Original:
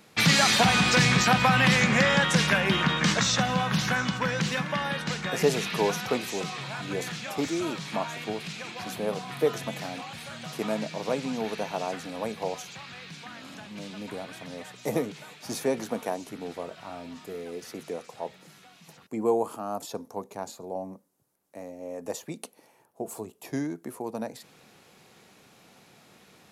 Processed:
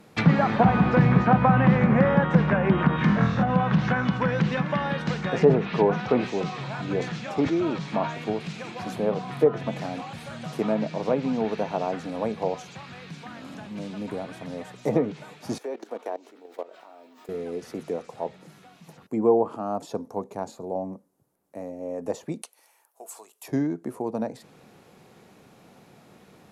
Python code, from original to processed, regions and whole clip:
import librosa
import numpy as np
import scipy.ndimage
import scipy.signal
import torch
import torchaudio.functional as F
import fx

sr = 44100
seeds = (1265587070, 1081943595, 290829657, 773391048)

y = fx.chain(x, sr, fx.peak_eq(hz=540.0, db=-7.0, octaves=1.6),
    fx.room_flutter(wall_m=4.2, rt60_s=0.65), at=(2.96, 3.43))
y = fx.chain(y, sr, fx.lowpass(hz=7500.0, slope=12),
    fx.sustainer(db_per_s=79.0), at=(5.23, 8.15))
y = fx.chain(y, sr, fx.level_steps(step_db=17),
    fx.highpass(hz=330.0, slope=24),
    fx.resample_bad(factor=2, down='filtered', up='zero_stuff'), at=(15.58, 17.29))
y = fx.chain(y, sr, fx.highpass(hz=1200.0, slope=12),
    fx.high_shelf(hz=4500.0, db=10.5), at=(22.42, 23.48))
y = fx.high_shelf(y, sr, hz=11000.0, db=6.5)
y = fx.env_lowpass_down(y, sr, base_hz=1400.0, full_db=-19.5)
y = fx.tilt_shelf(y, sr, db=6.0, hz=1500.0)